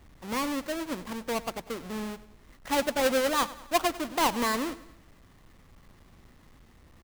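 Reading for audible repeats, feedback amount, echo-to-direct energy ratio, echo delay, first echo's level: 3, 49%, -16.5 dB, 98 ms, -17.5 dB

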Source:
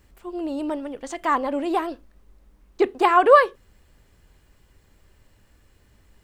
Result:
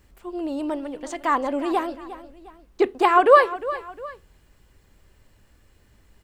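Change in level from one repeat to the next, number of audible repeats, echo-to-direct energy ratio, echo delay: -8.0 dB, 2, -14.5 dB, 356 ms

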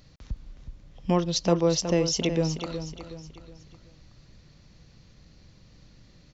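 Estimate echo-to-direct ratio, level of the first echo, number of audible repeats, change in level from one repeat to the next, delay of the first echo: -8.5 dB, -9.5 dB, 4, -7.5 dB, 369 ms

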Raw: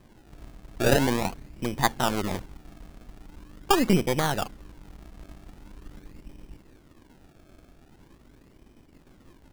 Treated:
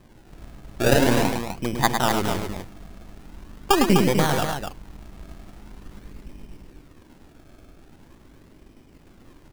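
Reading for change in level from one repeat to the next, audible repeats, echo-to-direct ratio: no regular repeats, 2, -3.0 dB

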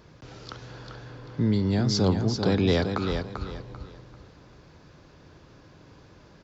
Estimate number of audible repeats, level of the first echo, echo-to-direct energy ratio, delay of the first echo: 3, -6.5 dB, -6.0 dB, 392 ms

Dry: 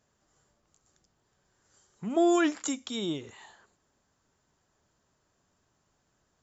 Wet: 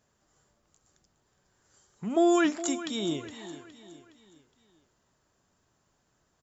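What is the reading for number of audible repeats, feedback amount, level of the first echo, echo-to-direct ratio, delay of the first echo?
3, 44%, -14.0 dB, -13.0 dB, 415 ms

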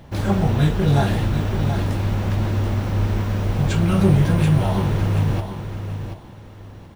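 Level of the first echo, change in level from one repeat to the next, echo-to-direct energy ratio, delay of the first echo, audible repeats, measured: -8.5 dB, -11.5 dB, -8.0 dB, 731 ms, 2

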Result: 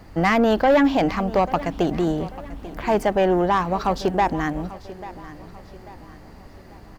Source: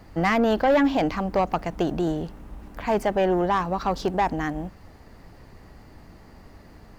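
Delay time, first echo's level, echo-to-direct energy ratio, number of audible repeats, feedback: 841 ms, -17.0 dB, -16.0 dB, 3, 42%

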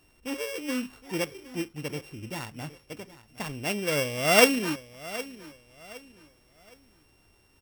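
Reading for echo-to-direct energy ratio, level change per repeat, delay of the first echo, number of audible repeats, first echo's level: -16.5 dB, -10.0 dB, 765 ms, 2, -17.0 dB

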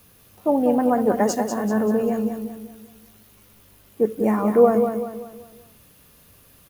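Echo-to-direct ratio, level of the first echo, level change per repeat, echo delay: -6.0 dB, -7.0 dB, -7.5 dB, 193 ms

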